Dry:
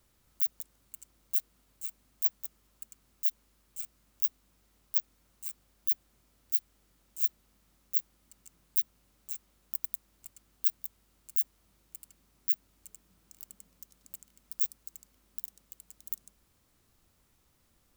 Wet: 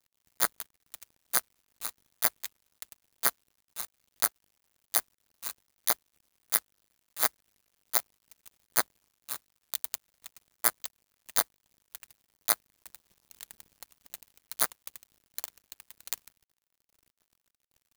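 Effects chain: bit-reversed sample order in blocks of 32 samples; word length cut 10-bit, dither none; trim +1.5 dB

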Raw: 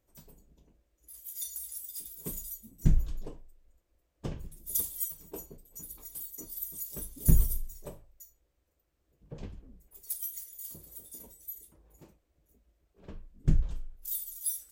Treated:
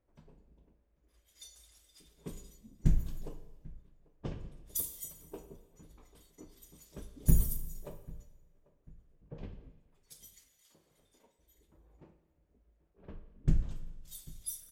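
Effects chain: 9.69–11.39 s: high-pass 1 kHz 6 dB/octave; on a send: feedback delay 793 ms, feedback 40%, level -23 dB; on the sum: level-controlled noise filter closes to 2 kHz, open at -26.5 dBFS; Schroeder reverb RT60 1.2 s, DRR 11 dB; trim -2.5 dB

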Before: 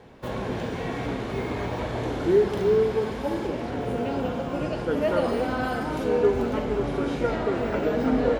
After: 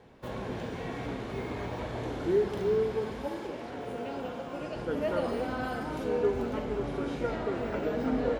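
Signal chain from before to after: 3.28–4.76 s: bass shelf 220 Hz -10 dB; trim -6.5 dB

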